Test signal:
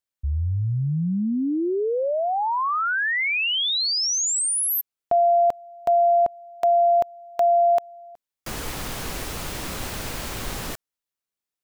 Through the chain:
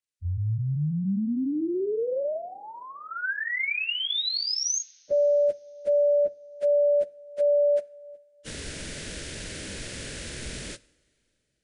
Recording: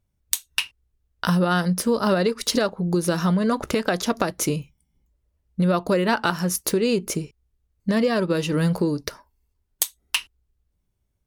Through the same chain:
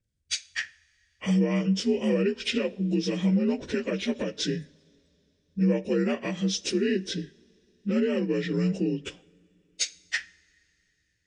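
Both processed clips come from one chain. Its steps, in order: inharmonic rescaling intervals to 83%; band shelf 950 Hz -14 dB 1 oct; two-slope reverb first 0.59 s, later 3.7 s, from -18 dB, DRR 18 dB; gain -3 dB

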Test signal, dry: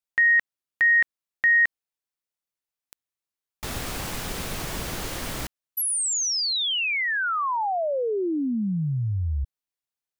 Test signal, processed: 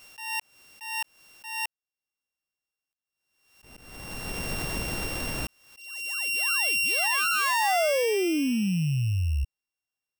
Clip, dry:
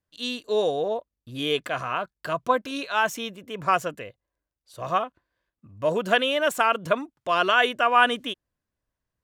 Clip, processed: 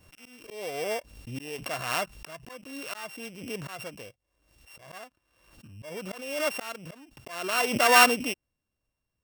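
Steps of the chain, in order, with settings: sample sorter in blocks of 16 samples; dynamic EQ 720 Hz, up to +3 dB, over -36 dBFS, Q 1.5; auto swell 0.752 s; backwards sustainer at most 68 dB/s

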